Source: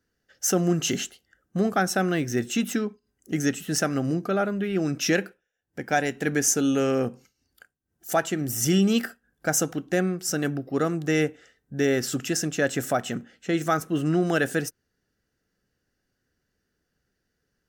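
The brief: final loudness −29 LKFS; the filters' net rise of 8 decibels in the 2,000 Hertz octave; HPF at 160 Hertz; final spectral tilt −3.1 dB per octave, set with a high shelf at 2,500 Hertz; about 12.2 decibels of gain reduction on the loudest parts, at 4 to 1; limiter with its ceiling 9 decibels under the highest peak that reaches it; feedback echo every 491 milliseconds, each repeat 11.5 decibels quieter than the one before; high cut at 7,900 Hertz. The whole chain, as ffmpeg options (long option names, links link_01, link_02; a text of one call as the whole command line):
ffmpeg -i in.wav -af "highpass=160,lowpass=7900,equalizer=frequency=2000:width_type=o:gain=7.5,highshelf=frequency=2500:gain=6.5,acompressor=threshold=-29dB:ratio=4,alimiter=limit=-21.5dB:level=0:latency=1,aecho=1:1:491|982|1473:0.266|0.0718|0.0194,volume=4.5dB" out.wav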